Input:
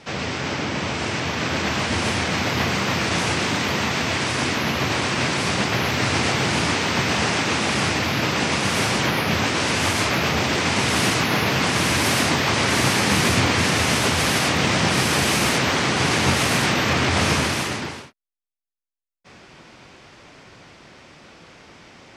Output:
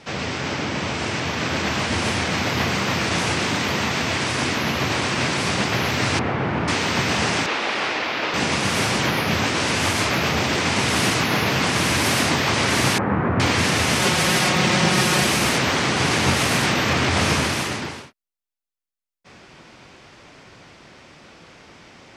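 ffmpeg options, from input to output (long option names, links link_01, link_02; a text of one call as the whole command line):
ffmpeg -i in.wav -filter_complex "[0:a]asettb=1/sr,asplit=3[link_01][link_02][link_03];[link_01]atrim=end=6.194[link_04];[link_02]atrim=start=6.19:end=6.68,asetpts=PTS-STARTPTS,afade=type=in:duration=0.004:curve=qsin,afade=type=out:start_time=0.486:duration=0.004:curve=qsin,lowpass=1600[link_05];[link_03]atrim=start=6.676[link_06];[link_04][link_05]acrossfade=duration=0.004:curve1=hsin:curve2=qsin[link_07];[link_07][link_06]acrossfade=duration=0.004:curve1=qsin:curve2=hsin,asettb=1/sr,asplit=3[link_08][link_09][link_10];[link_08]atrim=end=7.464[link_11];[link_09]atrim=start=7.46:end=8.34,asetpts=PTS-STARTPTS,afade=type=in:duration=0.004:curve=qsin,afade=type=out:start_time=0.876:duration=0.004:curve=qsin,acrossover=split=310 4800:gain=0.0891 1 0.126[link_12][link_13][link_14];[link_12][link_13][link_14]amix=inputs=3:normalize=0[link_15];[link_10]atrim=start=8.336[link_16];[link_11][link_15]acrossfade=duration=0.004:curve1=hsin:curve2=qsin[link_17];[link_17][link_16]acrossfade=duration=0.004:curve1=qsin:curve2=hsin,asettb=1/sr,asplit=3[link_18][link_19][link_20];[link_18]atrim=end=12.984[link_21];[link_19]atrim=start=12.98:end=13.4,asetpts=PTS-STARTPTS,afade=type=in:duration=0.004:curve=qsin,afade=type=out:start_time=0.416:duration=0.004:curve=qsin,lowpass=frequency=1500:width=0.5412,lowpass=frequency=1500:width=1.3066[link_22];[link_20]atrim=start=13.396[link_23];[link_21][link_22]acrossfade=duration=0.004:curve1=hsin:curve2=qsin[link_24];[link_24][link_23]acrossfade=duration=0.004:curve1=qsin:curve2=hsin,asettb=1/sr,asplit=3[link_25][link_26][link_27];[link_25]atrim=end=13.994[link_28];[link_26]atrim=start=13.99:end=15.27,asetpts=PTS-STARTPTS,afade=type=in:duration=0.004:curve=qsin,afade=type=out:start_time=1.276:duration=0.004:curve=qsin,aecho=1:1:5.5:0.6,atrim=end_sample=56448[link_29];[link_27]atrim=start=15.266[link_30];[link_28][link_29]acrossfade=duration=0.004:curve1=hsin:curve2=qsin[link_31];[link_31][link_30]acrossfade=duration=0.004:curve1=qsin:curve2=hsin" out.wav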